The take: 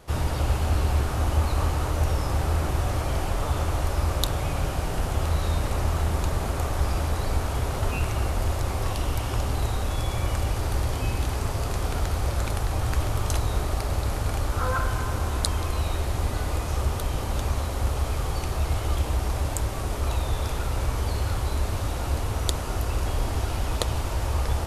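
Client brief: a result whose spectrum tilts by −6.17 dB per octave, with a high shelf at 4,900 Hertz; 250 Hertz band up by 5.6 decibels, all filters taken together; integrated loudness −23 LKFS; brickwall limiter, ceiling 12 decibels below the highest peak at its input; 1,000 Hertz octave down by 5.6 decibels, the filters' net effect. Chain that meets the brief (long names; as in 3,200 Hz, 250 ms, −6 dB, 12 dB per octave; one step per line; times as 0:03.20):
parametric band 250 Hz +8 dB
parametric band 1,000 Hz −8 dB
high-shelf EQ 4,900 Hz −3.5 dB
level +6 dB
brickwall limiter −12.5 dBFS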